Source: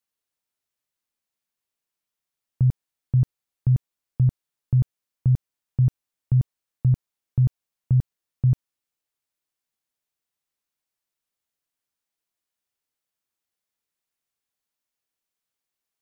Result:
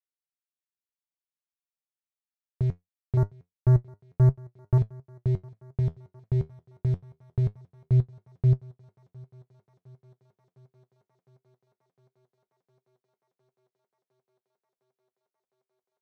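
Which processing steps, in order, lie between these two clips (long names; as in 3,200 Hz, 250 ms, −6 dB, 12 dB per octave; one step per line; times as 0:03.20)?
0:03.17–0:04.78: low-shelf EQ 450 Hz +9.5 dB
leveller curve on the samples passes 3
flanger 0.24 Hz, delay 7.1 ms, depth 6.3 ms, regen +59%
on a send: feedback echo with a high-pass in the loop 708 ms, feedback 84%, high-pass 160 Hz, level −21.5 dB
on the sum: level −8 dB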